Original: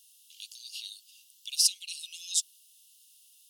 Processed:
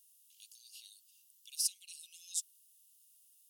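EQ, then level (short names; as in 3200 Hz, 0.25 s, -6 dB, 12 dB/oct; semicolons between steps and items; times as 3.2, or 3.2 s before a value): bell 3500 Hz -13 dB 2 oct; -3.0 dB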